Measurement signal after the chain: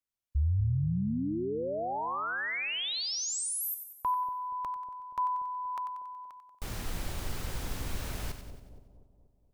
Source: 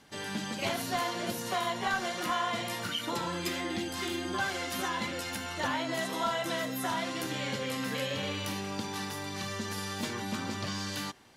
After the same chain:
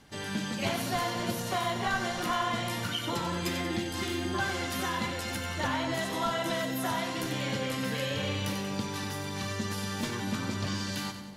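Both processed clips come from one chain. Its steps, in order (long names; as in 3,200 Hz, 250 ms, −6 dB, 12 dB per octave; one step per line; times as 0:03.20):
low-shelf EQ 120 Hz +12 dB
on a send: echo with a time of its own for lows and highs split 730 Hz, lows 238 ms, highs 93 ms, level −9 dB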